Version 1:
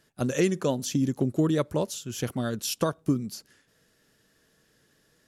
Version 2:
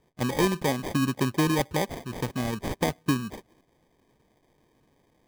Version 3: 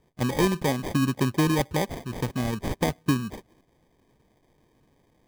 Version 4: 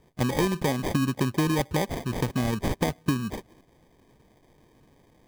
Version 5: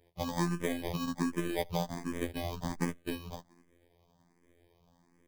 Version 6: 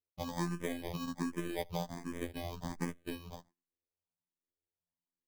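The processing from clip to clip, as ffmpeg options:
ffmpeg -i in.wav -af "acrusher=samples=32:mix=1:aa=0.000001" out.wav
ffmpeg -i in.wav -af "lowshelf=frequency=180:gain=4.5" out.wav
ffmpeg -i in.wav -af "acompressor=threshold=-28dB:ratio=3,volume=5dB" out.wav
ffmpeg -i in.wav -filter_complex "[0:a]aeval=exprs='if(lt(val(0),0),0.708*val(0),val(0))':channel_layout=same,afftfilt=real='hypot(re,im)*cos(PI*b)':imag='0':win_size=2048:overlap=0.75,asplit=2[link_01][link_02];[link_02]afreqshift=1.3[link_03];[link_01][link_03]amix=inputs=2:normalize=1" out.wav
ffmpeg -i in.wav -af "agate=range=-31dB:threshold=-54dB:ratio=16:detection=peak,volume=-4.5dB" out.wav

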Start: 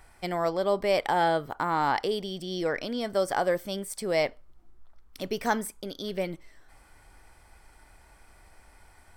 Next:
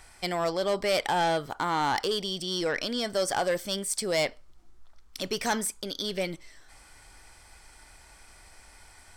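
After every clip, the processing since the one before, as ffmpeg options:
ffmpeg -i in.wav -filter_complex "[0:a]acrossover=split=8000[link_01][link_02];[link_01]crystalizer=i=4.5:c=0[link_03];[link_03][link_02]amix=inputs=2:normalize=0,asoftclip=type=tanh:threshold=-19.5dB" out.wav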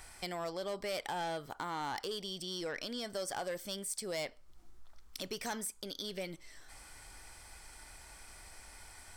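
ffmpeg -i in.wav -af "highshelf=frequency=11000:gain=7.5,acompressor=threshold=-44dB:ratio=2,volume=-1dB" out.wav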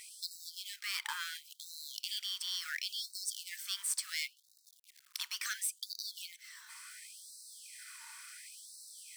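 ffmpeg -i in.wav -af "acrusher=bits=3:mode=log:mix=0:aa=0.000001,afftfilt=real='re*gte(b*sr/1024,860*pow(3800/860,0.5+0.5*sin(2*PI*0.71*pts/sr)))':imag='im*gte(b*sr/1024,860*pow(3800/860,0.5+0.5*sin(2*PI*0.71*pts/sr)))':win_size=1024:overlap=0.75,volume=4.5dB" out.wav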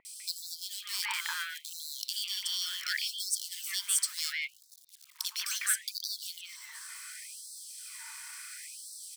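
ffmpeg -i in.wav -filter_complex "[0:a]acrossover=split=1100|3300[link_01][link_02][link_03];[link_03]adelay=50[link_04];[link_02]adelay=200[link_05];[link_01][link_05][link_04]amix=inputs=3:normalize=0,volume=7dB" out.wav

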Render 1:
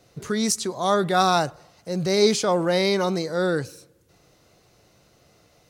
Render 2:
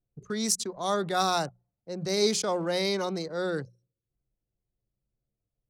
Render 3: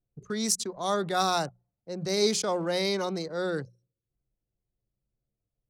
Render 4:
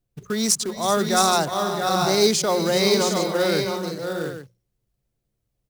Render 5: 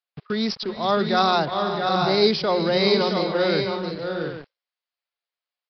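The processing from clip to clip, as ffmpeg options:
ffmpeg -i in.wav -filter_complex "[0:a]anlmdn=15.8,bandreject=frequency=60:width_type=h:width=6,bandreject=frequency=120:width_type=h:width=6,bandreject=frequency=180:width_type=h:width=6,acrossover=split=300|830|4300[link_01][link_02][link_03][link_04];[link_04]acontrast=39[link_05];[link_01][link_02][link_03][link_05]amix=inputs=4:normalize=0,volume=-7dB" out.wav
ffmpeg -i in.wav -af anull out.wav
ffmpeg -i in.wav -af "aecho=1:1:325|386|387|669|722|818:0.141|0.188|0.126|0.531|0.355|0.237,acrusher=bits=4:mode=log:mix=0:aa=0.000001,volume=6.5dB" out.wav
ffmpeg -i in.wav -filter_complex "[0:a]acrossover=split=800[link_01][link_02];[link_01]aeval=exprs='val(0)*gte(abs(val(0)),0.0106)':channel_layout=same[link_03];[link_03][link_02]amix=inputs=2:normalize=0,aresample=11025,aresample=44100" out.wav

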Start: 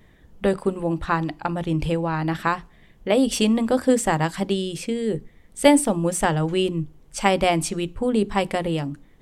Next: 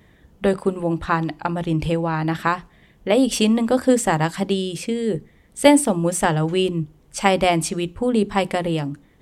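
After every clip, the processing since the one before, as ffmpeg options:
ffmpeg -i in.wav -af "highpass=41,volume=2dB" out.wav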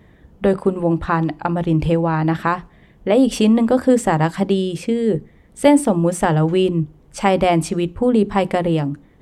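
ffmpeg -i in.wav -filter_complex "[0:a]highshelf=frequency=2200:gain=-9.5,asplit=2[link_01][link_02];[link_02]alimiter=limit=-12.5dB:level=0:latency=1,volume=1.5dB[link_03];[link_01][link_03]amix=inputs=2:normalize=0,volume=-2dB" out.wav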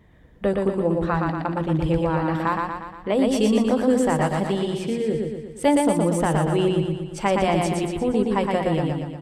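ffmpeg -i in.wav -filter_complex "[0:a]flanger=delay=0.9:depth=1.4:regen=72:speed=1.6:shape=triangular,asplit=2[link_01][link_02];[link_02]aecho=0:1:118|236|354|472|590|708|826|944:0.708|0.389|0.214|0.118|0.0648|0.0356|0.0196|0.0108[link_03];[link_01][link_03]amix=inputs=2:normalize=0,volume=-1.5dB" out.wav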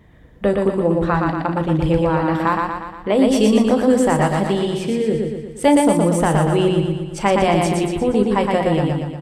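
ffmpeg -i in.wav -filter_complex "[0:a]asplit=2[link_01][link_02];[link_02]adelay=34,volume=-12dB[link_03];[link_01][link_03]amix=inputs=2:normalize=0,volume=4.5dB" out.wav

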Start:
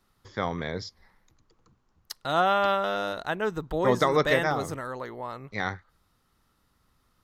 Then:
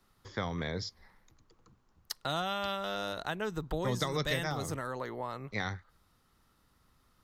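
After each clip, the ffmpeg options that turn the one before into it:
ffmpeg -i in.wav -filter_complex "[0:a]acrossover=split=170|3000[link_01][link_02][link_03];[link_02]acompressor=threshold=-33dB:ratio=6[link_04];[link_01][link_04][link_03]amix=inputs=3:normalize=0" out.wav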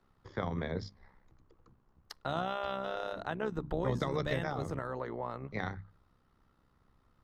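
ffmpeg -i in.wav -af "lowpass=frequency=1200:poles=1,bandreject=frequency=50:width_type=h:width=6,bandreject=frequency=100:width_type=h:width=6,bandreject=frequency=150:width_type=h:width=6,bandreject=frequency=200:width_type=h:width=6,bandreject=frequency=250:width_type=h:width=6,bandreject=frequency=300:width_type=h:width=6,tremolo=f=65:d=0.621,volume=4dB" out.wav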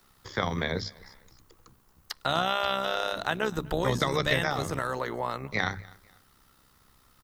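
ffmpeg -i in.wav -filter_complex "[0:a]aecho=1:1:247|494:0.0631|0.0221,crystalizer=i=8.5:c=0,acrossover=split=3700[link_01][link_02];[link_02]acompressor=threshold=-43dB:ratio=4:attack=1:release=60[link_03];[link_01][link_03]amix=inputs=2:normalize=0,volume=4dB" out.wav

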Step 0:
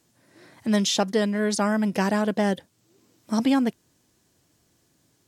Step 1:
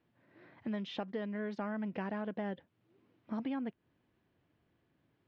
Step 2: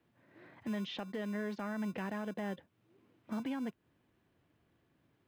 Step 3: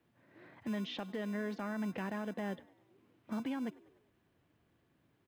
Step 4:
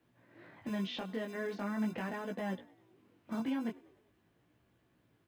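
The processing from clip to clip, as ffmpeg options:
ffmpeg -i in.wav -af "lowpass=frequency=2900:width=0.5412,lowpass=frequency=2900:width=1.3066,acompressor=threshold=-30dB:ratio=3,volume=-7.5dB" out.wav
ffmpeg -i in.wav -filter_complex "[0:a]acrossover=split=170|1500[link_01][link_02][link_03];[link_01]acrusher=samples=35:mix=1:aa=0.000001[link_04];[link_02]alimiter=level_in=11dB:limit=-24dB:level=0:latency=1,volume=-11dB[link_05];[link_04][link_05][link_03]amix=inputs=3:normalize=0,volume=2dB" out.wav
ffmpeg -i in.wav -filter_complex "[0:a]asplit=5[link_01][link_02][link_03][link_04][link_05];[link_02]adelay=99,afreqshift=44,volume=-23dB[link_06];[link_03]adelay=198,afreqshift=88,volume=-28dB[link_07];[link_04]adelay=297,afreqshift=132,volume=-33.1dB[link_08];[link_05]adelay=396,afreqshift=176,volume=-38.1dB[link_09];[link_01][link_06][link_07][link_08][link_09]amix=inputs=5:normalize=0" out.wav
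ffmpeg -i in.wav -af "flanger=delay=16:depth=6.3:speed=0.42,volume=4.5dB" out.wav

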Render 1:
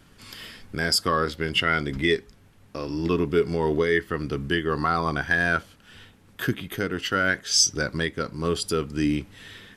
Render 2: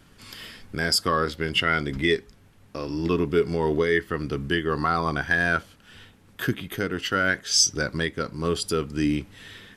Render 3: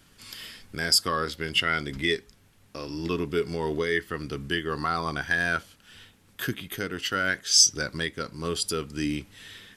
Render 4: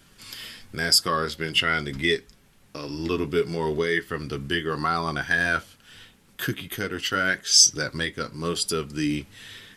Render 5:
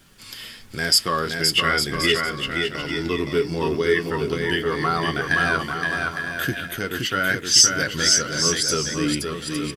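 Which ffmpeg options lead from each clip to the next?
ffmpeg -i in.wav -af anull out.wav
ffmpeg -i in.wav -af "highshelf=frequency=2400:gain=8.5,volume=-5.5dB" out.wav
ffmpeg -i in.wav -af "flanger=delay=5:depth=3.7:regen=-52:speed=0.8:shape=sinusoidal,volume=6.5dB" out.wav
ffmpeg -i in.wav -filter_complex "[0:a]asplit=2[link_01][link_02];[link_02]aecho=0:1:520|858|1078|1221|1313:0.631|0.398|0.251|0.158|0.1[link_03];[link_01][link_03]amix=inputs=2:normalize=0,acrusher=bits=10:mix=0:aa=0.000001,volume=1.5dB" out.wav

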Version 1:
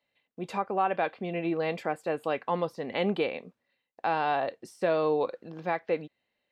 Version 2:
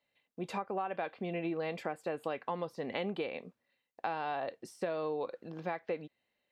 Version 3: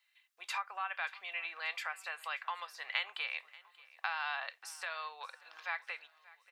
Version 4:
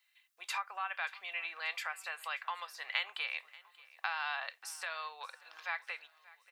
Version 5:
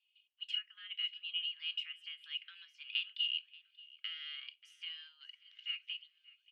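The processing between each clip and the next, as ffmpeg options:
ffmpeg -i in.wav -af "acompressor=threshold=-30dB:ratio=6,volume=-2dB" out.wav
ffmpeg -i in.wav -af "highpass=frequency=1200:width=0.5412,highpass=frequency=1200:width=1.3066,aecho=1:1:584|1168|1752:0.0841|0.0412|0.0202,volume=7.5dB" out.wav
ffmpeg -i in.wav -af "highshelf=frequency=7000:gain=5.5" out.wav
ffmpeg -i in.wav -af "bandpass=frequency=2400:width_type=q:width=15:csg=0,afreqshift=500,volume=7.5dB" out.wav

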